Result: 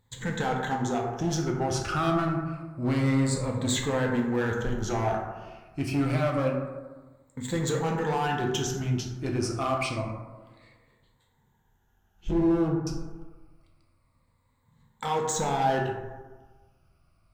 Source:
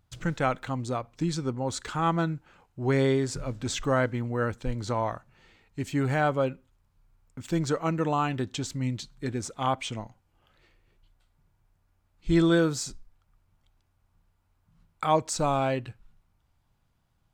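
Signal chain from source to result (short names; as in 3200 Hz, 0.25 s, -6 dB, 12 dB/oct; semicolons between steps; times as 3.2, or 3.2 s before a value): moving spectral ripple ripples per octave 1, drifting -0.27 Hz, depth 14 dB; 12.31–12.87 steep low-pass 1000 Hz 96 dB/oct; limiter -19 dBFS, peak gain reduction 9.5 dB; overloaded stage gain 24.5 dB; plate-style reverb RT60 1.3 s, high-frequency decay 0.35×, DRR -0.5 dB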